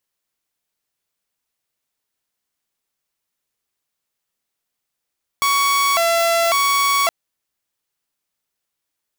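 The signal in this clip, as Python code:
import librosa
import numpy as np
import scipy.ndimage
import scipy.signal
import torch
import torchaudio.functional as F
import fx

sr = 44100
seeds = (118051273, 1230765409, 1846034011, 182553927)

y = fx.siren(sr, length_s=1.67, kind='hi-lo', low_hz=674.0, high_hz=1120.0, per_s=0.91, wave='saw', level_db=-12.0)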